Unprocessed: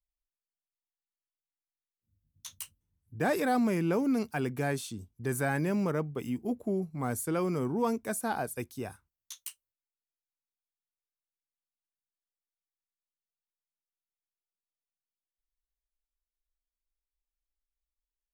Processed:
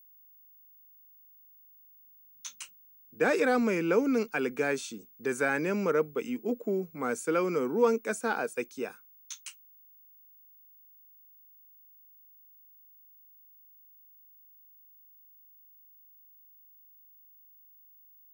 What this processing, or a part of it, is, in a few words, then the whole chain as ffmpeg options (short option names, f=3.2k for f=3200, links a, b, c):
old television with a line whistle: -af "highpass=f=200:w=0.5412,highpass=f=200:w=1.3066,equalizer=f=470:t=q:w=4:g=9,equalizer=f=710:t=q:w=4:g=-4,equalizer=f=1.4k:t=q:w=4:g=8,equalizer=f=2.4k:t=q:w=4:g=8,equalizer=f=6.4k:t=q:w=4:g=6,lowpass=f=8.5k:w=0.5412,lowpass=f=8.5k:w=1.3066,aeval=exprs='val(0)+0.00178*sin(2*PI*15625*n/s)':c=same"